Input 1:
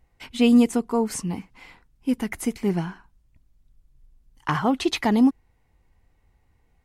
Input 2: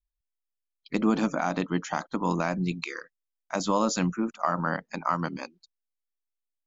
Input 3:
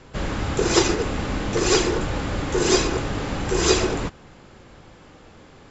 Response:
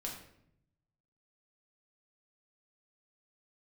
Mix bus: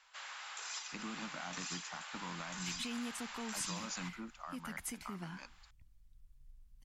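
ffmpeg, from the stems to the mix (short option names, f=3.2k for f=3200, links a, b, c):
-filter_complex "[0:a]adelay=2450,volume=-2.5dB[a];[1:a]volume=-8dB[b];[2:a]highpass=f=790:w=0.5412,highpass=f=790:w=1.3066,acompressor=threshold=-30dB:ratio=10,volume=-10dB[c];[a][b]amix=inputs=2:normalize=0,acrossover=split=150|330[d][e][f];[d]acompressor=threshold=-48dB:ratio=4[g];[e]acompressor=threshold=-26dB:ratio=4[h];[f]acompressor=threshold=-30dB:ratio=4[i];[g][h][i]amix=inputs=3:normalize=0,alimiter=level_in=3.5dB:limit=-24dB:level=0:latency=1:release=309,volume=-3.5dB,volume=0dB[j];[c][j]amix=inputs=2:normalize=0,equalizer=f=400:t=o:w=2.1:g=-13"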